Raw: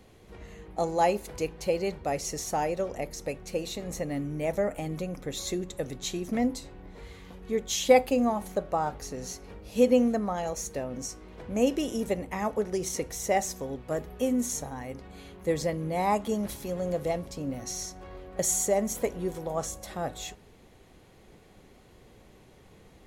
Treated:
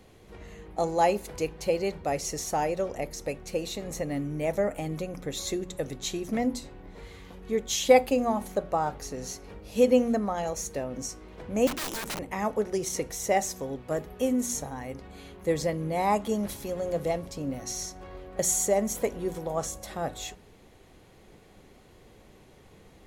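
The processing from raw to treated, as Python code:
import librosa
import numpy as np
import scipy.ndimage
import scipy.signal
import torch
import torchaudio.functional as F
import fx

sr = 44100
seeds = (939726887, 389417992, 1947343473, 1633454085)

y = fx.overflow_wrap(x, sr, gain_db=29.0, at=(11.67, 12.19))
y = fx.hum_notches(y, sr, base_hz=60, count=4)
y = y * 10.0 ** (1.0 / 20.0)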